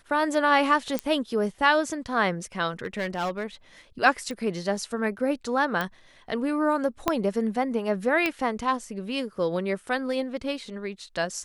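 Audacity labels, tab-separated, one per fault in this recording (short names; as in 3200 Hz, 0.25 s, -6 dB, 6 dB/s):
0.990000	0.990000	pop -12 dBFS
2.840000	3.440000	clipped -23.5 dBFS
4.310000	4.310000	pop
5.810000	5.810000	pop -14 dBFS
7.080000	7.080000	pop -8 dBFS
8.260000	8.260000	pop -12 dBFS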